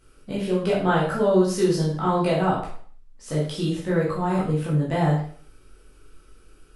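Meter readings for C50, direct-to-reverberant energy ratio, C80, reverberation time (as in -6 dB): 4.0 dB, -7.0 dB, 8.0 dB, 0.50 s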